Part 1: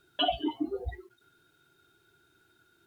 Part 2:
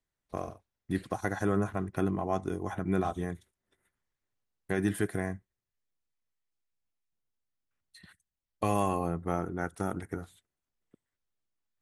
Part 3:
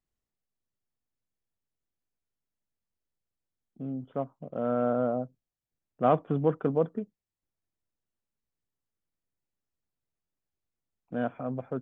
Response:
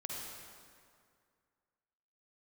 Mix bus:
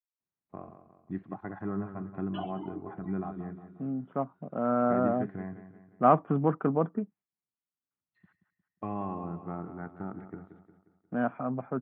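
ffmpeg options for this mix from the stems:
-filter_complex "[0:a]adelay=2150,volume=0.251[s0];[1:a]tiltshelf=f=850:g=5.5,adelay=200,volume=0.335,asplit=2[s1][s2];[s2]volume=0.282[s3];[2:a]agate=range=0.0224:threshold=0.00178:ratio=3:detection=peak,volume=1.26[s4];[s3]aecho=0:1:178|356|534|712|890|1068|1246:1|0.47|0.221|0.104|0.0488|0.0229|0.0108[s5];[s0][s1][s4][s5]amix=inputs=4:normalize=0,highpass=130,equalizer=f=190:t=q:w=4:g=3,equalizer=f=500:t=q:w=4:g=-7,equalizer=f=850:t=q:w=4:g=3,equalizer=f=1200:t=q:w=4:g=5,lowpass=f=2400:w=0.5412,lowpass=f=2400:w=1.3066"

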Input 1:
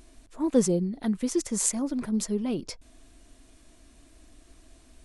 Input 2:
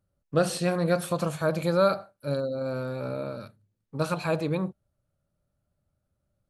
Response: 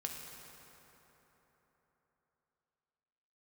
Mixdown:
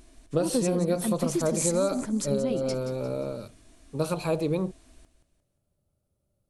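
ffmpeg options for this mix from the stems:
-filter_complex "[0:a]volume=0.944,asplit=2[s0][s1];[s1]volume=0.282[s2];[1:a]equalizer=f=400:t=o:w=0.67:g=6,equalizer=f=1600:t=o:w=0.67:g=-9,equalizer=f=10000:t=o:w=0.67:g=6,volume=1[s3];[s2]aecho=0:1:176|352|528|704|880|1056:1|0.41|0.168|0.0689|0.0283|0.0116[s4];[s0][s3][s4]amix=inputs=3:normalize=0,acompressor=threshold=0.0891:ratio=6"

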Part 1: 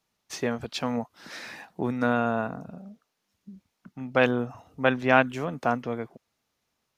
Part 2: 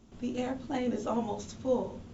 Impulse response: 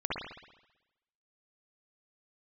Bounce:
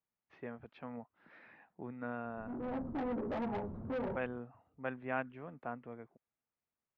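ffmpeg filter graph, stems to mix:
-filter_complex "[0:a]lowpass=f=2400:w=0.5412,lowpass=f=2400:w=1.3066,volume=0.141,asplit=2[s0][s1];[1:a]lowpass=f=1100:w=0.5412,lowpass=f=1100:w=1.3066,alimiter=level_in=1.12:limit=0.0631:level=0:latency=1:release=96,volume=0.891,asoftclip=type=tanh:threshold=0.015,adelay=2250,volume=1.33[s2];[s1]apad=whole_len=193202[s3];[s2][s3]sidechaincompress=threshold=0.00501:ratio=8:attack=39:release=507[s4];[s0][s4]amix=inputs=2:normalize=0"

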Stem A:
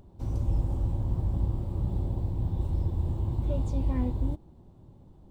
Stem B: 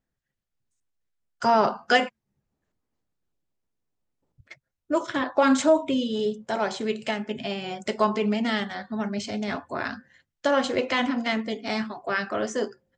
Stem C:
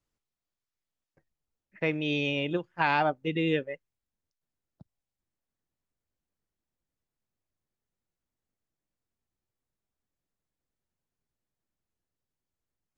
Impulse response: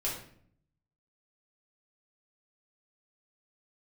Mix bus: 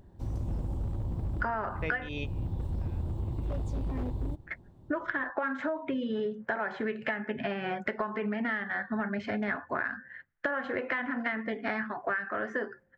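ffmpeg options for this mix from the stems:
-filter_complex "[0:a]aeval=exprs='0.075*(abs(mod(val(0)/0.075+3,4)-2)-1)':c=same,volume=0.794[s0];[1:a]acompressor=threshold=0.0631:ratio=2,lowpass=f=1700:t=q:w=4.6,volume=1.19,asplit=2[s1][s2];[2:a]volume=0.794[s3];[s2]apad=whole_len=572122[s4];[s3][s4]sidechaingate=range=0.0251:threshold=0.00501:ratio=16:detection=peak[s5];[s0][s1][s5]amix=inputs=3:normalize=0,acompressor=threshold=0.0398:ratio=16"

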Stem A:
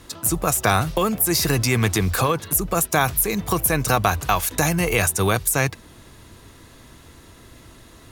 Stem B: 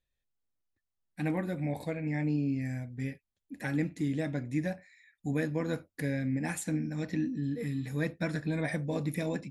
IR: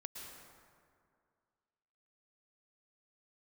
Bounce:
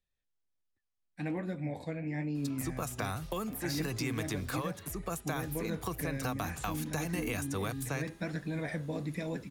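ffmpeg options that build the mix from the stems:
-filter_complex "[0:a]bandreject=f=407.2:t=h:w=4,bandreject=f=814.4:t=h:w=4,bandreject=f=1221.6:t=h:w=4,bandreject=f=1628.8:t=h:w=4,bandreject=f=2036:t=h:w=4,bandreject=f=2443.2:t=h:w=4,bandreject=f=2850.4:t=h:w=4,bandreject=f=3257.6:t=h:w=4,bandreject=f=3664.8:t=h:w=4,bandreject=f=4072:t=h:w=4,bandreject=f=4479.2:t=h:w=4,bandreject=f=4886.4:t=h:w=4,bandreject=f=5293.6:t=h:w=4,bandreject=f=5700.8:t=h:w=4,bandreject=f=6108:t=h:w=4,bandreject=f=6515.2:t=h:w=4,bandreject=f=6922.4:t=h:w=4,bandreject=f=7329.6:t=h:w=4,bandreject=f=7736.8:t=h:w=4,bandreject=f=8144:t=h:w=4,bandreject=f=8551.2:t=h:w=4,bandreject=f=8958.4:t=h:w=4,bandreject=f=9365.6:t=h:w=4,bandreject=f=9772.8:t=h:w=4,bandreject=f=10180:t=h:w=4,bandreject=f=10587.2:t=h:w=4,aeval=exprs='0.668*(cos(1*acos(clip(val(0)/0.668,-1,1)))-cos(1*PI/2))+0.0376*(cos(2*acos(clip(val(0)/0.668,-1,1)))-cos(2*PI/2))+0.0376*(cos(4*acos(clip(val(0)/0.668,-1,1)))-cos(4*PI/2))+0.00668*(cos(6*acos(clip(val(0)/0.668,-1,1)))-cos(6*PI/2))':c=same,adelay=2350,volume=0.237[s0];[1:a]lowpass=7600,flanger=delay=4.9:depth=8:regen=73:speed=1.3:shape=sinusoidal,volume=1.19[s1];[s0][s1]amix=inputs=2:normalize=0,acrossover=split=230|5600[s2][s3][s4];[s2]acompressor=threshold=0.0141:ratio=4[s5];[s3]acompressor=threshold=0.02:ratio=4[s6];[s4]acompressor=threshold=0.00562:ratio=4[s7];[s5][s6][s7]amix=inputs=3:normalize=0"

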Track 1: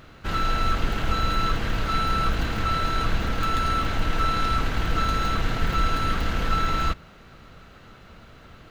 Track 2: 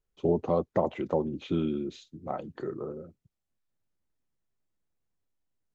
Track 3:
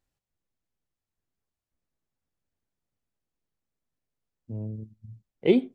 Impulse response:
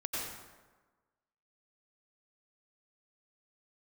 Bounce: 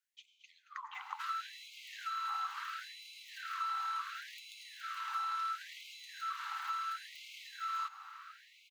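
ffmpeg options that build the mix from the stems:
-filter_complex "[0:a]adelay=950,volume=0.531,asplit=2[s0][s1];[s1]volume=0.133[s2];[1:a]acompressor=threshold=0.0398:ratio=4,volume=1,asplit=3[s3][s4][s5];[s4]volume=0.266[s6];[s5]volume=0.282[s7];[3:a]atrim=start_sample=2205[s8];[s2][s6]amix=inputs=2:normalize=0[s9];[s9][s8]afir=irnorm=-1:irlink=0[s10];[s7]aecho=0:1:223:1[s11];[s0][s3][s10][s11]amix=inputs=4:normalize=0,equalizer=f=1200:t=o:w=0.54:g=9.5,acrossover=split=1100|3500[s12][s13][s14];[s12]acompressor=threshold=0.0158:ratio=4[s15];[s13]acompressor=threshold=0.00631:ratio=4[s16];[s14]acompressor=threshold=0.00178:ratio=4[s17];[s15][s16][s17]amix=inputs=3:normalize=0,afftfilt=real='re*gte(b*sr/1024,750*pow(2100/750,0.5+0.5*sin(2*PI*0.72*pts/sr)))':imag='im*gte(b*sr/1024,750*pow(2100/750,0.5+0.5*sin(2*PI*0.72*pts/sr)))':win_size=1024:overlap=0.75"

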